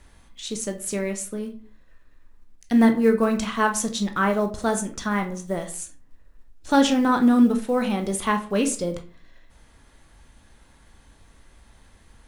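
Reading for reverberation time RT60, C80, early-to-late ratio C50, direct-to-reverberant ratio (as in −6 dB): 0.45 s, 17.5 dB, 12.0 dB, 4.5 dB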